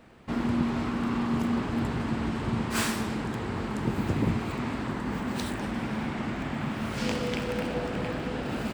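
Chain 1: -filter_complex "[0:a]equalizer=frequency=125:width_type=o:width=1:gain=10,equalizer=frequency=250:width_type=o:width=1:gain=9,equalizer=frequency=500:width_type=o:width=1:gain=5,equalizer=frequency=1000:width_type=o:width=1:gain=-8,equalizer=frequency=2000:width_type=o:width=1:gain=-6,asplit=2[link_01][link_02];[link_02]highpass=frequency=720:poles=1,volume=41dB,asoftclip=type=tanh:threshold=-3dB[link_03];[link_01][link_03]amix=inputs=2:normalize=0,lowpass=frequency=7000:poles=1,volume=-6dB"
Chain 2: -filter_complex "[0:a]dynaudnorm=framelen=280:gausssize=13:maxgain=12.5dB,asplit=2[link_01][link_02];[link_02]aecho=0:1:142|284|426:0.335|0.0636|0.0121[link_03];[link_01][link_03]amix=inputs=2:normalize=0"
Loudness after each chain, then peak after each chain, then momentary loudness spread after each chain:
−10.0, −21.0 LKFS; −3.0, −2.5 dBFS; 1, 11 LU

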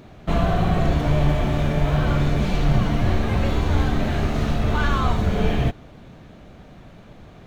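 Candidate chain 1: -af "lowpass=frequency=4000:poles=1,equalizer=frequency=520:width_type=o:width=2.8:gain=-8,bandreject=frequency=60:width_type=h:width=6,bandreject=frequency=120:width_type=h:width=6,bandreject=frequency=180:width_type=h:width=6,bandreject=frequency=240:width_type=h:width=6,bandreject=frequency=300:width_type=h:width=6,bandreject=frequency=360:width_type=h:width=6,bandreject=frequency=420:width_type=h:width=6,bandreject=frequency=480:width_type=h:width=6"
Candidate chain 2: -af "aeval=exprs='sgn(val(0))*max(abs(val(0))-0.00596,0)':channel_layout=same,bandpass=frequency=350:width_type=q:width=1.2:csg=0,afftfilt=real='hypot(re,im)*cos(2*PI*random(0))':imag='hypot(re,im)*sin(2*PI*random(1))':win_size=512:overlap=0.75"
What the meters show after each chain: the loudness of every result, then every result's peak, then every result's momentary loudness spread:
−25.5, −35.5 LKFS; −9.0, −19.0 dBFS; 3, 3 LU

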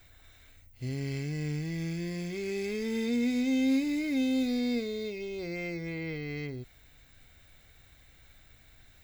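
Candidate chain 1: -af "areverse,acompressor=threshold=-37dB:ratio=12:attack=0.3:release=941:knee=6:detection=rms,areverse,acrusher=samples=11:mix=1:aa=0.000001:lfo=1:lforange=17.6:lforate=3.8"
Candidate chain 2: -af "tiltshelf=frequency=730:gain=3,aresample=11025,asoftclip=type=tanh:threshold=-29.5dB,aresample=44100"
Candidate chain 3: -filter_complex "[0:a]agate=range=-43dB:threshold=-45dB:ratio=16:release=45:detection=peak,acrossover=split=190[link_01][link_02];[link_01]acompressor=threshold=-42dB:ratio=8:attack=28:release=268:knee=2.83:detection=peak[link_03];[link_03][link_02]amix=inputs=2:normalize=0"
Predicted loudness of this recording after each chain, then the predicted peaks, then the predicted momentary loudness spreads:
−44.0, −34.5, −32.5 LKFS; −35.0, −29.5, −20.0 dBFS; 16, 5, 10 LU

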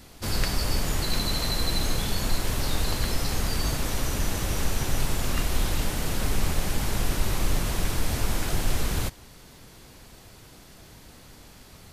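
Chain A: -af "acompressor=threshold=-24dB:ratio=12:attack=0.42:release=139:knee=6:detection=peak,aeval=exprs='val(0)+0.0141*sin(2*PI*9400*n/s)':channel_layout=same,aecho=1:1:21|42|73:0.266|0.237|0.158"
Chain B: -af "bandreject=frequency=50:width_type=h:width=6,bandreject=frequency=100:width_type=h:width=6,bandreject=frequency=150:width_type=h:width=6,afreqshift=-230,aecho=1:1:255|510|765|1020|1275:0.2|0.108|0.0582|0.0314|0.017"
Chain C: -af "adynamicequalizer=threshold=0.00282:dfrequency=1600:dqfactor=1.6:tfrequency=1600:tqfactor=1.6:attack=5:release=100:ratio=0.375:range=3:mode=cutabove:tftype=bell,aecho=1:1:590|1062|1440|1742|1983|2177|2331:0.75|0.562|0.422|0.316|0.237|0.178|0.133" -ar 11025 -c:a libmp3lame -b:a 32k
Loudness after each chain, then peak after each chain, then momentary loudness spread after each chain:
−32.5, −24.0, −27.5 LKFS; −18.5, −9.5, −8.0 dBFS; 6, 3, 10 LU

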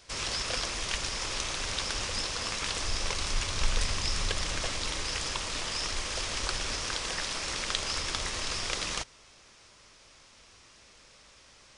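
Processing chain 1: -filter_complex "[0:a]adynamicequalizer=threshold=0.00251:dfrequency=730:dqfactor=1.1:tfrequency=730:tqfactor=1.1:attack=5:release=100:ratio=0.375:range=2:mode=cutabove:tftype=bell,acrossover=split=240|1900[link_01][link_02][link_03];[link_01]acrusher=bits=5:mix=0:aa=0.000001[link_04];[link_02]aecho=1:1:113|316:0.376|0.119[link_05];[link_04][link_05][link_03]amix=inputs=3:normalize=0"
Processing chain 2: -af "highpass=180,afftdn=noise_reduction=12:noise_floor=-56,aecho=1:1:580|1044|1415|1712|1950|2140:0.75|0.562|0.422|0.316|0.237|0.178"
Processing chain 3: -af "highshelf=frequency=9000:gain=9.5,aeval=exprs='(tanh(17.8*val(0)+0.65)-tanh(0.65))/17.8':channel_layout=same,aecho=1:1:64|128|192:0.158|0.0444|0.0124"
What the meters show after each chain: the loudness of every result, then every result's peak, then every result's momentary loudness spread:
−31.5, −28.5, −33.0 LKFS; −10.5, −9.0, −20.0 dBFS; 2, 6, 1 LU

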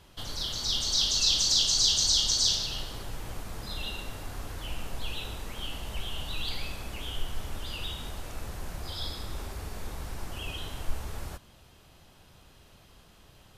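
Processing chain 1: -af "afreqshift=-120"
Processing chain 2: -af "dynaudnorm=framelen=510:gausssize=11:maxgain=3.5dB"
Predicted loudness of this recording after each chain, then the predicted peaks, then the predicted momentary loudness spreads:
−29.0, −28.5 LKFS; −11.5, −10.0 dBFS; 16, 16 LU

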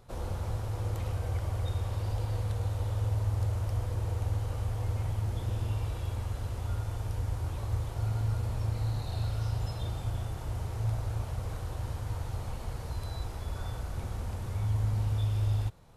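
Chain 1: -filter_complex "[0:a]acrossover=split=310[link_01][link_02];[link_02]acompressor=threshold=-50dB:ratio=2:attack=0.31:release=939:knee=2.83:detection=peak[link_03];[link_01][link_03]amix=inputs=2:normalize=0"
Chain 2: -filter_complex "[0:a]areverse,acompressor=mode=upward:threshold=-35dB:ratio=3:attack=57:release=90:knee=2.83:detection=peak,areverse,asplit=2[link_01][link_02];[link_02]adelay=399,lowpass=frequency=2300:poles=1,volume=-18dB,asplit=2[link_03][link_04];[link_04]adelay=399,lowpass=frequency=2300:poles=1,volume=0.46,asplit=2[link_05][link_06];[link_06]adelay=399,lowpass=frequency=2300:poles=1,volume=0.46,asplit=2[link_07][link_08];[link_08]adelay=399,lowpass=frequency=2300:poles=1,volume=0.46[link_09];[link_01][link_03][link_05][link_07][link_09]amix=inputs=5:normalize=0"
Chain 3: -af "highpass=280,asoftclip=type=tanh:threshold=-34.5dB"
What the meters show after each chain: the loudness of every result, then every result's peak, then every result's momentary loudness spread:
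−34.0, −33.5, −45.5 LKFS; −19.5, −18.0, −35.0 dBFS; 8, 7, 2 LU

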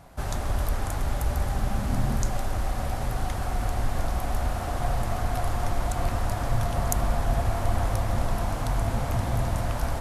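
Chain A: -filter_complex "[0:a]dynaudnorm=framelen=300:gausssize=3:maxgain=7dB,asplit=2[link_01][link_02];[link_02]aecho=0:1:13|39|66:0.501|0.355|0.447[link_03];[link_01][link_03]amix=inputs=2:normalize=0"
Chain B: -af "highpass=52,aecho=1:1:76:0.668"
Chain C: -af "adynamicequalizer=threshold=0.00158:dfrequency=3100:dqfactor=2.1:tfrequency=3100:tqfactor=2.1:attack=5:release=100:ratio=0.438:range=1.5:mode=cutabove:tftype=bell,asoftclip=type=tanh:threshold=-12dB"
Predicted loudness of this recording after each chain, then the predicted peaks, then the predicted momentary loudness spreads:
−21.0, −28.5, −29.5 LKFS; −1.5, −3.0, −12.0 dBFS; 3, 4, 3 LU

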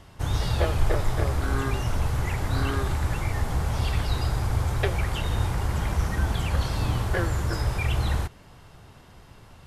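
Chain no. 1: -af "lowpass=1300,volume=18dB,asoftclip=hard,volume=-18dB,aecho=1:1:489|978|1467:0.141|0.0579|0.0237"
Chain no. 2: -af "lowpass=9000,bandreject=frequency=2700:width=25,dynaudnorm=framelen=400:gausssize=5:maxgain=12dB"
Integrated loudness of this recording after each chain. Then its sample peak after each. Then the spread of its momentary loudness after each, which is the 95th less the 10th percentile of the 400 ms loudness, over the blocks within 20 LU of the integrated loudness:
−28.0, −18.0 LKFS; −16.5, −1.5 dBFS; 2, 5 LU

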